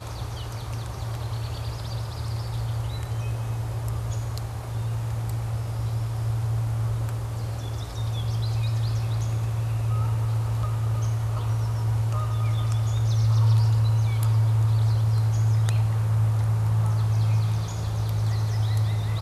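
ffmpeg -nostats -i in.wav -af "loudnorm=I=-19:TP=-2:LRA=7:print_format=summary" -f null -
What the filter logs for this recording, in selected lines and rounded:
Input Integrated:    -25.6 LUFS
Input True Peak:     -12.8 dBTP
Input LRA:             7.5 LU
Input Threshold:     -35.6 LUFS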